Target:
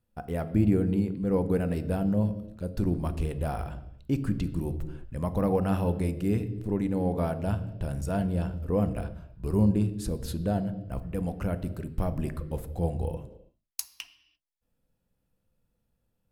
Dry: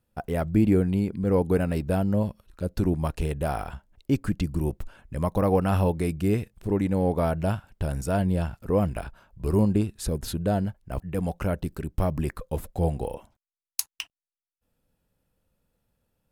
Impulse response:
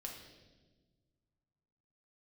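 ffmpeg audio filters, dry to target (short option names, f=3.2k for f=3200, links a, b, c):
-filter_complex "[0:a]asplit=2[a][b];[b]lowshelf=f=380:g=9.5[c];[1:a]atrim=start_sample=2205,afade=t=out:st=0.4:d=0.01,atrim=end_sample=18081[d];[c][d]afir=irnorm=-1:irlink=0,volume=-3.5dB[e];[a][e]amix=inputs=2:normalize=0,volume=-8.5dB"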